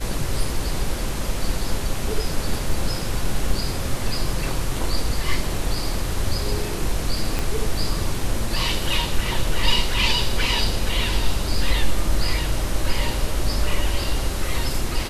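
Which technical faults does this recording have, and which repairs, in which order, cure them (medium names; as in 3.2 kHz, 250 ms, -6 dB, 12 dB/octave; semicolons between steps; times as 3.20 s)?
7.39 s: pop -9 dBFS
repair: de-click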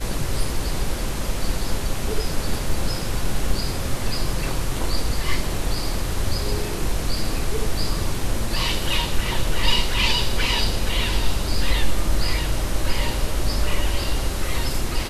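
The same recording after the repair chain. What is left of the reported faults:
7.39 s: pop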